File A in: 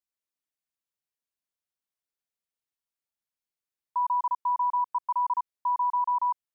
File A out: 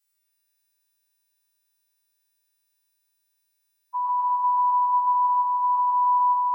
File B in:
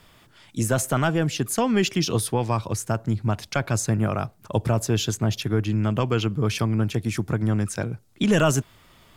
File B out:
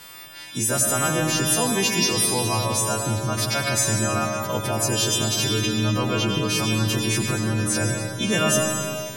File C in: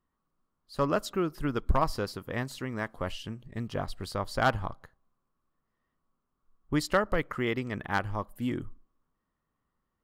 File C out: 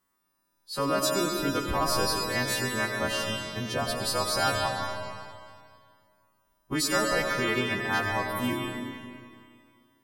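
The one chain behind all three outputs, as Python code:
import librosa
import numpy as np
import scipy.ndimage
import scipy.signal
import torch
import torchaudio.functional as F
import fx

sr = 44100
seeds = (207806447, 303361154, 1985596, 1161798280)

p1 = fx.freq_snap(x, sr, grid_st=2)
p2 = fx.low_shelf(p1, sr, hz=88.0, db=-9.5)
p3 = fx.over_compress(p2, sr, threshold_db=-31.0, ratio=-1.0)
p4 = p2 + F.gain(torch.from_numpy(p3), 1.0).numpy()
p5 = fx.echo_stepped(p4, sr, ms=149, hz=3300.0, octaves=-1.4, feedback_pct=70, wet_db=-11.0)
p6 = fx.rev_freeverb(p5, sr, rt60_s=2.2, hf_ratio=0.95, predelay_ms=55, drr_db=1.5)
y = F.gain(torch.from_numpy(p6), -4.0).numpy()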